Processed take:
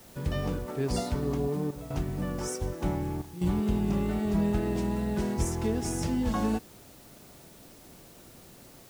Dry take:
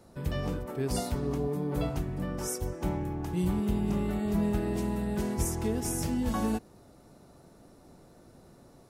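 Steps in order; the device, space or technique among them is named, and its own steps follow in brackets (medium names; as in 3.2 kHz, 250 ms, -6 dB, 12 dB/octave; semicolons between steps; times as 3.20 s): worn cassette (low-pass 7.7 kHz 12 dB/octave; wow and flutter 28 cents; level dips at 1.71/3.22 s, 191 ms -13 dB; white noise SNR 25 dB); trim +1.5 dB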